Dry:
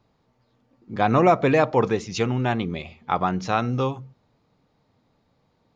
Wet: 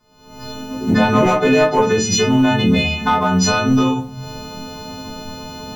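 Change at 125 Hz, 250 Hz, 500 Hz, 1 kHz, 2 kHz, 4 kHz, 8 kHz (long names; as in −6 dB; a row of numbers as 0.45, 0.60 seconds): +6.0 dB, +10.5 dB, +5.5 dB, +4.5 dB, +9.5 dB, +15.0 dB, can't be measured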